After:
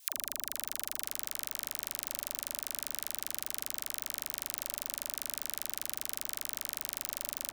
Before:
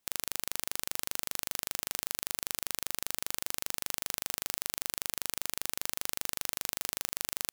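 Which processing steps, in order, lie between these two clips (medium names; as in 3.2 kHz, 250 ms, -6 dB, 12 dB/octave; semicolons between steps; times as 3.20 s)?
octave divider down 1 oct, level 0 dB; high-pass 72 Hz 6 dB/octave; phase dispersion lows, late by 95 ms, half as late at 420 Hz; peak limiter -21 dBFS, peak gain reduction 9.5 dB; treble shelf 3.2 kHz +8.5 dB; tape echo 490 ms, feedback 61%, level -9.5 dB, low-pass 3.6 kHz; three bands compressed up and down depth 100%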